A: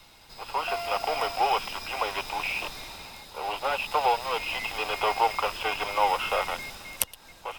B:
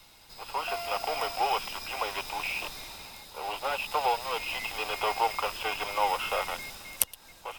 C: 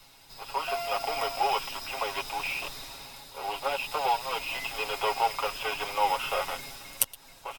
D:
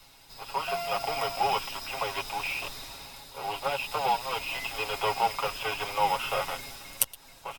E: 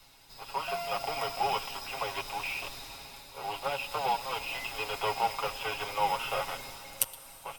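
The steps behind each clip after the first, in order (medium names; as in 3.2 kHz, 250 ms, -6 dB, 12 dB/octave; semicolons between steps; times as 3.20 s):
treble shelf 6.1 kHz +6.5 dB; trim -3.5 dB
comb 7.3 ms; trim -1 dB
octave divider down 2 oct, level -5 dB
plate-style reverb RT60 4.5 s, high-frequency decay 0.95×, DRR 14.5 dB; trim -3 dB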